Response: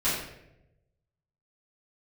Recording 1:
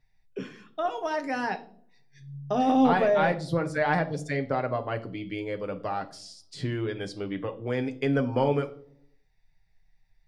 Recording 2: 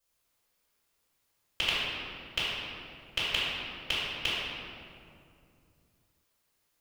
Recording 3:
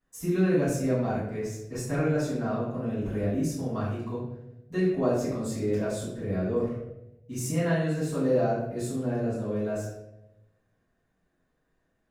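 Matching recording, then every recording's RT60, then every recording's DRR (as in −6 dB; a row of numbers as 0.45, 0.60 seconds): 3; 0.60, 2.5, 0.85 seconds; 4.5, −11.0, −13.5 decibels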